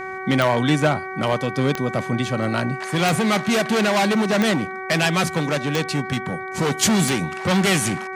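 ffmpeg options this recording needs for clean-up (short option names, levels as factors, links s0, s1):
-af "adeclick=t=4,bandreject=f=378.2:t=h:w=4,bandreject=f=756.4:t=h:w=4,bandreject=f=1134.6:t=h:w=4,bandreject=f=1512.8:t=h:w=4,bandreject=f=1891:t=h:w=4,bandreject=f=2269.2:t=h:w=4"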